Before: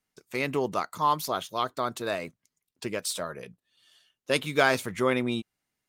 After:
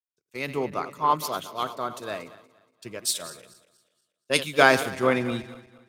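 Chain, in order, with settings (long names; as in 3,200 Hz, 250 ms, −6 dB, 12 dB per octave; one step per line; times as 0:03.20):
feedback delay that plays each chunk backwards 118 ms, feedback 77%, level −11.5 dB
multiband upward and downward expander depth 100%
level −1 dB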